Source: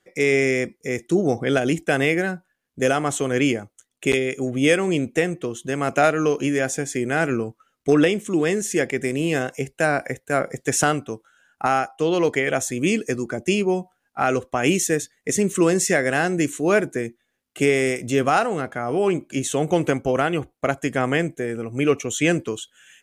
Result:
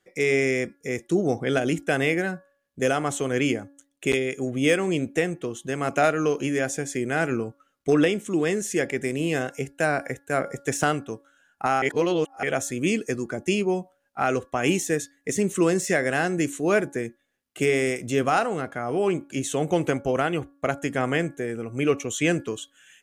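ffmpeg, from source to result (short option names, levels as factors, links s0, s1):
-filter_complex "[0:a]asplit=3[s0][s1][s2];[s0]atrim=end=11.822[s3];[s1]atrim=start=11.818:end=12.432,asetpts=PTS-STARTPTS,areverse[s4];[s2]atrim=start=12.428[s5];[s3][s4]acrossfade=d=0.004:c1=hsin:c2=hsin[s6];[s6][s5]acrossfade=d=0.004:c1=hsin:c2=hsin,bandreject=f=281:t=h:w=4,bandreject=f=562:t=h:w=4,bandreject=f=843:t=h:w=4,bandreject=f=1124:t=h:w=4,bandreject=f=1405:t=h:w=4,bandreject=f=1686:t=h:w=4,deesser=0.4,volume=0.708"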